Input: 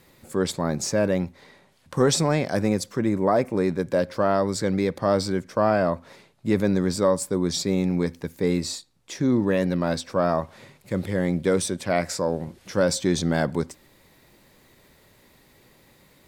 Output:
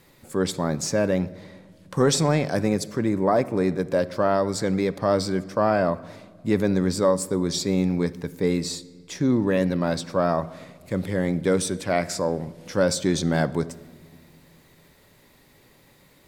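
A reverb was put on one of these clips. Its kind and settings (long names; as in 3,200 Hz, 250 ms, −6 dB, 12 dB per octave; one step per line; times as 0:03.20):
rectangular room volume 2,300 cubic metres, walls mixed, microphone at 0.31 metres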